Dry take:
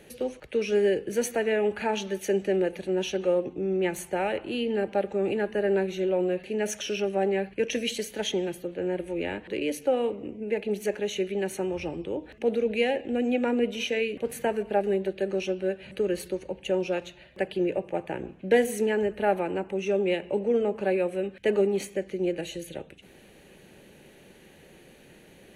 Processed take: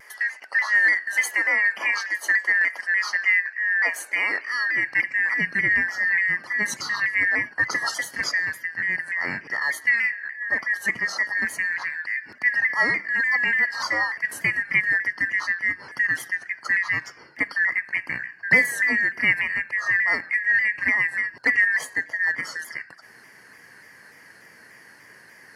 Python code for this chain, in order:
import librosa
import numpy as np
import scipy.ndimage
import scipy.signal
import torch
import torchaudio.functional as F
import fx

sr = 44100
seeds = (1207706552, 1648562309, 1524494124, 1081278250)

y = fx.band_shuffle(x, sr, order='2143')
y = fx.filter_sweep_highpass(y, sr, from_hz=600.0, to_hz=120.0, start_s=3.9, end_s=5.53, q=1.2)
y = fx.vibrato_shape(y, sr, shape='saw_down', rate_hz=3.4, depth_cents=100.0)
y = y * librosa.db_to_amplitude(3.5)